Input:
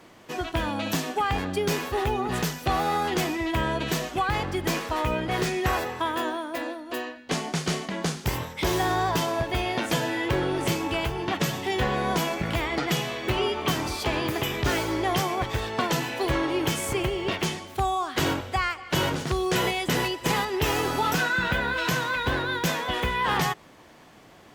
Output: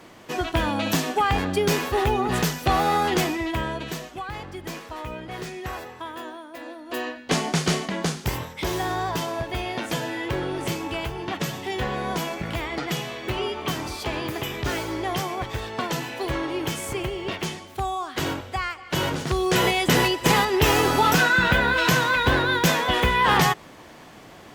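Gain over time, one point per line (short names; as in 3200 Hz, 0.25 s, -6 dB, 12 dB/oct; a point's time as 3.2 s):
3.15 s +4 dB
4.18 s -8 dB
6.57 s -8 dB
7.09 s +5 dB
7.63 s +5 dB
8.7 s -2 dB
18.73 s -2 dB
19.87 s +6 dB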